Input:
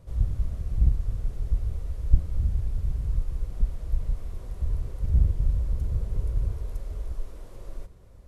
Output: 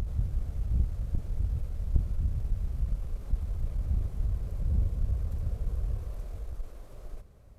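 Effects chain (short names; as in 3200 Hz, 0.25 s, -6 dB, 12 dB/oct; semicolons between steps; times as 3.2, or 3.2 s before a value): one diode to ground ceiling -22 dBFS; wide varispeed 1.09×; reverse echo 0.812 s -3 dB; gain -3.5 dB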